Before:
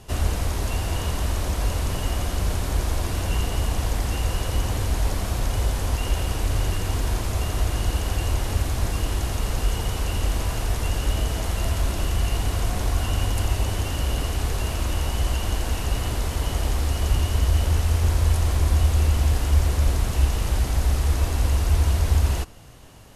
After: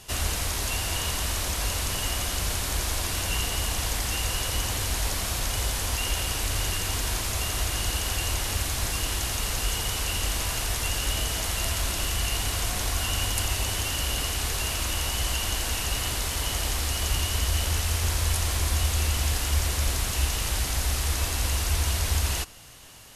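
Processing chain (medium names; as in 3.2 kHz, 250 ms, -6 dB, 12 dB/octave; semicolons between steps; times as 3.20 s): tilt shelf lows -7 dB, about 1.2 kHz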